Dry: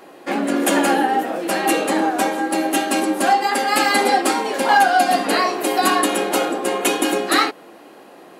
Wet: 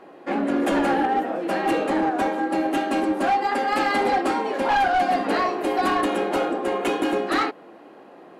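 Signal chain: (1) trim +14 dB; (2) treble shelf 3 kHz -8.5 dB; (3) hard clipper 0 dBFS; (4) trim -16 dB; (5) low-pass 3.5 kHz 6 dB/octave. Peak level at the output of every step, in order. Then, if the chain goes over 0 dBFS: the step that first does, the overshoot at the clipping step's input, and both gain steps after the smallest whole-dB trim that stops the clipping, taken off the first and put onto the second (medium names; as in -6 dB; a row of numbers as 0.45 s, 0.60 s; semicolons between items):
+9.0 dBFS, +8.0 dBFS, 0.0 dBFS, -16.0 dBFS, -16.0 dBFS; step 1, 8.0 dB; step 1 +6 dB, step 4 -8 dB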